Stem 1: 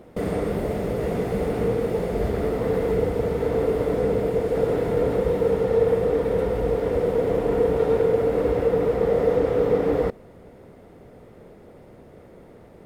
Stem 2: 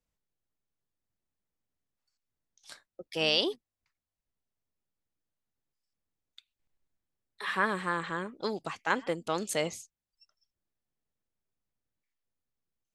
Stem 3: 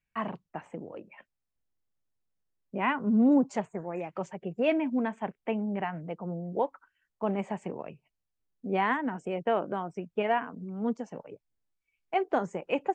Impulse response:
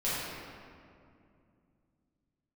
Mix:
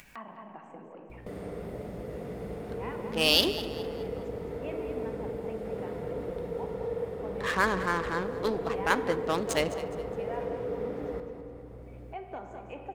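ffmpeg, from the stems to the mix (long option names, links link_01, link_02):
-filter_complex "[0:a]aeval=exprs='val(0)+0.01*(sin(2*PI*60*n/s)+sin(2*PI*2*60*n/s)/2+sin(2*PI*3*60*n/s)/3+sin(2*PI*4*60*n/s)/4+sin(2*PI*5*60*n/s)/5)':channel_layout=same,adelay=1100,volume=-16dB,asplit=3[link_01][link_02][link_03];[link_02]volume=-14.5dB[link_04];[link_03]volume=-11dB[link_05];[1:a]adynamicequalizer=threshold=0.00398:dfrequency=6700:dqfactor=0.78:tfrequency=6700:tqfactor=0.78:attack=5:release=100:ratio=0.375:range=3:mode=boostabove:tftype=bell,adynamicsmooth=sensitivity=7:basefreq=730,volume=1.5dB,asplit=3[link_06][link_07][link_08];[link_07]volume=-23.5dB[link_09];[link_08]volume=-15dB[link_10];[2:a]equalizer=frequency=860:width_type=o:width=0.77:gain=4,acompressor=mode=upward:threshold=-40dB:ratio=2.5,highpass=170,volume=-18dB,asplit=3[link_11][link_12][link_13];[link_12]volume=-12dB[link_14];[link_13]volume=-5.5dB[link_15];[3:a]atrim=start_sample=2205[link_16];[link_04][link_09][link_14]amix=inputs=3:normalize=0[link_17];[link_17][link_16]afir=irnorm=-1:irlink=0[link_18];[link_05][link_10][link_15]amix=inputs=3:normalize=0,aecho=0:1:208|416|624|832|1040:1|0.37|0.137|0.0507|0.0187[link_19];[link_01][link_06][link_11][link_18][link_19]amix=inputs=5:normalize=0,acompressor=mode=upward:threshold=-37dB:ratio=2.5"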